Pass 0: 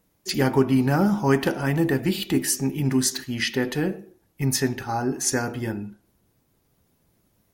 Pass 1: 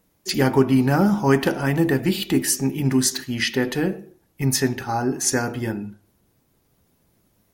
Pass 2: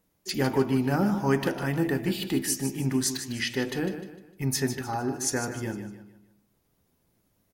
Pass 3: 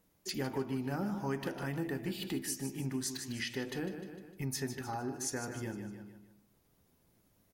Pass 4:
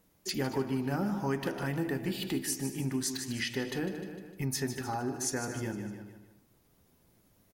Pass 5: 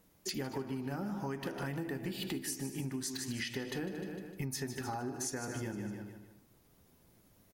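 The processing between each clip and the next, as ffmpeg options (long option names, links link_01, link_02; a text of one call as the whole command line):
ffmpeg -i in.wav -af "bandreject=frequency=50:width_type=h:width=6,bandreject=frequency=100:width_type=h:width=6,bandreject=frequency=150:width_type=h:width=6,volume=2.5dB" out.wav
ffmpeg -i in.wav -af "aecho=1:1:152|304|456|608:0.299|0.116|0.0454|0.0177,volume=-7dB" out.wav
ffmpeg -i in.wav -af "acompressor=threshold=-42dB:ratio=2" out.wav
ffmpeg -i in.wav -af "aecho=1:1:228:0.133,volume=4dB" out.wav
ffmpeg -i in.wav -af "acompressor=threshold=-36dB:ratio=6,volume=1dB" out.wav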